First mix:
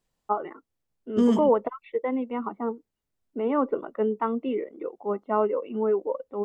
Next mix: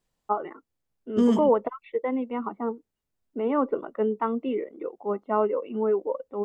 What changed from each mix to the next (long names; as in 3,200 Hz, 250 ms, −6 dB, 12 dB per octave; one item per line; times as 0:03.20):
nothing changed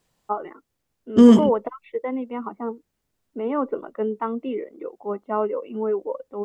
second voice +10.0 dB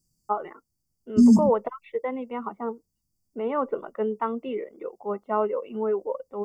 second voice: add linear-phase brick-wall band-stop 360–4,400 Hz
master: add parametric band 290 Hz −8 dB 0.54 octaves